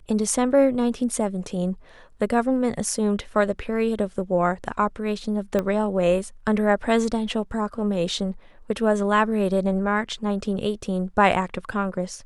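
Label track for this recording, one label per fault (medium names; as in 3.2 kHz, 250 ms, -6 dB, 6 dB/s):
5.590000	5.590000	pop -12 dBFS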